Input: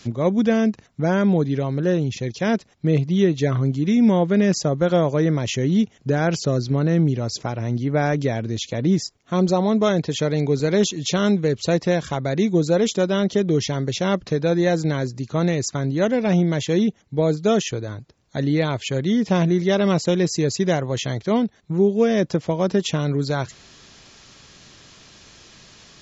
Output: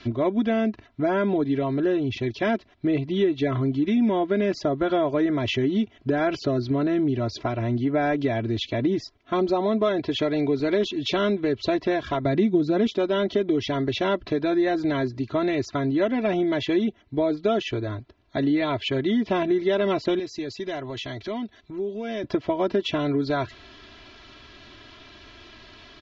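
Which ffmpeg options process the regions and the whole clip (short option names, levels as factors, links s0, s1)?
-filter_complex "[0:a]asettb=1/sr,asplit=3[s0][s1][s2];[s0]atrim=end=12.254[s3];[s1]atrim=start=12.25:end=12.87,asetpts=PTS-STARTPTS,afade=t=in:d=0.004:c=qsin,afade=t=out:st=0.616:d=0.004:c=qsin,highpass=54,equalizer=f=170:w=1.1:g=10.5[s4];[s2]atrim=start=12.866[s5];[s3][s4]acrossfade=d=0.004:c1=hsin:c2=qsin[s6];[s6][s5]acrossfade=d=0.004:c1=qsin:c2=hsin,asettb=1/sr,asplit=3[s7][s8][s9];[s7]atrim=end=20.194[s10];[s8]atrim=start=20.19:end=22.24,asetpts=PTS-STARTPTS,afade=t=in:d=0.004:c=qsin,afade=t=out:st=2.046:d=0.004:c=qsin,highshelf=f=3400:g=11.5,acompressor=threshold=0.0251:ratio=3:attack=3.2:release=140:knee=1:detection=peak[s11];[s9]atrim=start=22.236[s12];[s10][s11]acrossfade=d=0.004:c1=hsin:c2=qsin[s13];[s13][s12]acrossfade=d=0.004:c1=qsin:c2=hsin,lowpass=f=3900:w=0.5412,lowpass=f=3900:w=1.3066,aecho=1:1:3:0.85,acompressor=threshold=0.0891:ratio=2.5"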